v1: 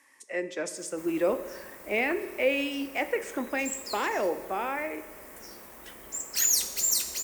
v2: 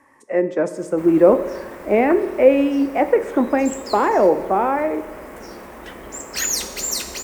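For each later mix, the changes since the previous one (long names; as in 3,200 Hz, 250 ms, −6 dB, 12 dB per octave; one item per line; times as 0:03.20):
speech: remove meter weighting curve D
master: remove first-order pre-emphasis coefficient 0.8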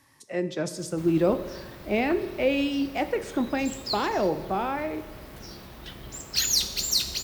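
speech: add high-shelf EQ 3,300 Hz +11.5 dB
master: add octave-band graphic EQ 125/250/500/1,000/2,000/4,000/8,000 Hz +8/−7/−10/−8/−9/+10/−9 dB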